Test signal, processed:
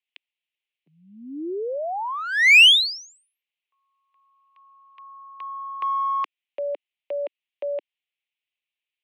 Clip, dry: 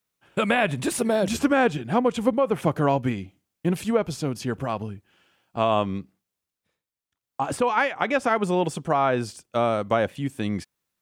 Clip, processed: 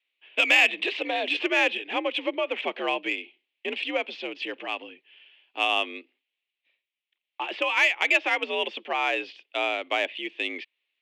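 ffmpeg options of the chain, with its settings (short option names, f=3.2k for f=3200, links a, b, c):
-af "highpass=f=250:t=q:w=0.5412,highpass=f=250:t=q:w=1.307,lowpass=f=2.8k:t=q:w=0.5176,lowpass=f=2.8k:t=q:w=0.7071,lowpass=f=2.8k:t=q:w=1.932,afreqshift=65,aexciter=amount=7.9:drive=9.3:freq=2.2k,volume=-6.5dB"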